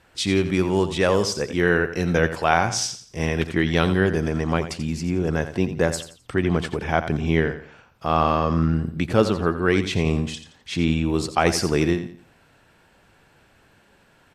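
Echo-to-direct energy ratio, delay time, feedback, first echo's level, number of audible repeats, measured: -11.0 dB, 86 ms, 33%, -11.5 dB, 3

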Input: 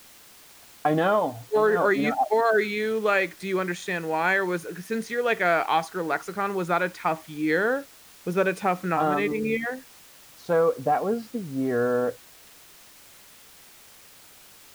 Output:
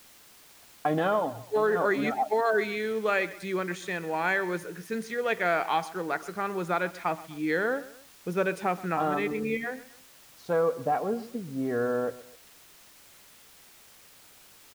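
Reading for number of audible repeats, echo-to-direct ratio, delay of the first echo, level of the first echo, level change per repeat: 2, -17.0 dB, 0.127 s, -18.0 dB, -7.0 dB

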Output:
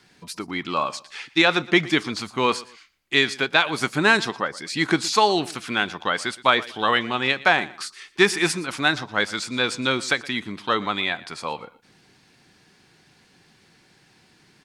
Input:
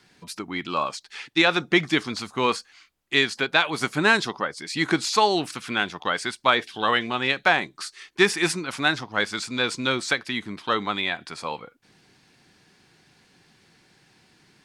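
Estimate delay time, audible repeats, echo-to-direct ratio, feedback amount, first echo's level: 0.118 s, 2, -19.5 dB, 27%, -20.0 dB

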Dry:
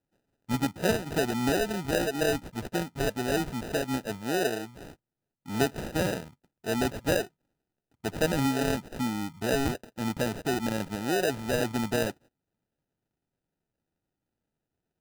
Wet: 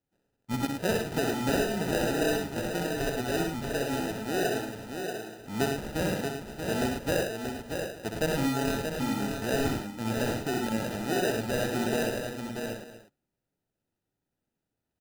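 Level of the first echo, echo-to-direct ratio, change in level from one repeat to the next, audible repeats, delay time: -5.0 dB, -0.5 dB, no steady repeat, 8, 63 ms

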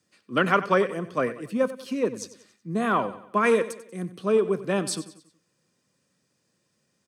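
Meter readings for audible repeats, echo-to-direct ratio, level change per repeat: 3, -14.0 dB, -7.0 dB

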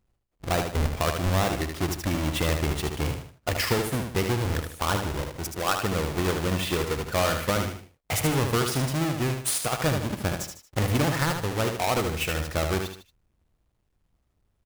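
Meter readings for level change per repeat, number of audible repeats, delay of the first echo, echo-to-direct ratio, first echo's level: -8.5 dB, 3, 76 ms, -5.5 dB, -6.0 dB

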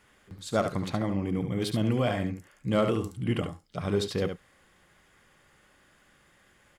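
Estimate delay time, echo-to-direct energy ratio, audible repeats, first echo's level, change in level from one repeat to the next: 71 ms, -7.5 dB, 1, -7.5 dB, no steady repeat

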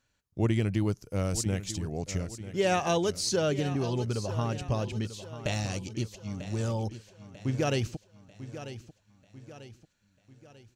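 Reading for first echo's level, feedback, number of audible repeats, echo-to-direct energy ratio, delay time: -13.0 dB, 46%, 4, -12.0 dB, 0.943 s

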